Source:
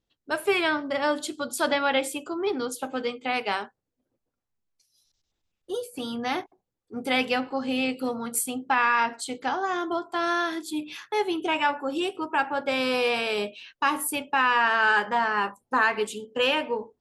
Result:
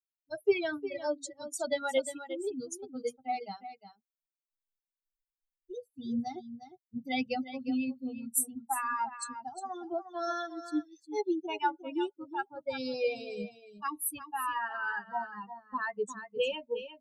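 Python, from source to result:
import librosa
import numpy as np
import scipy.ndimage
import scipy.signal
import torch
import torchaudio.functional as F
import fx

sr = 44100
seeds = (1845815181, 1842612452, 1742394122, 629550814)

p1 = fx.bin_expand(x, sr, power=3.0)
p2 = fx.bass_treble(p1, sr, bass_db=0, treble_db=5)
p3 = p2 + fx.echo_single(p2, sr, ms=356, db=-11.5, dry=0)
p4 = fx.rider(p3, sr, range_db=5, speed_s=2.0)
y = fx.peak_eq(p4, sr, hz=2700.0, db=-9.5, octaves=2.6)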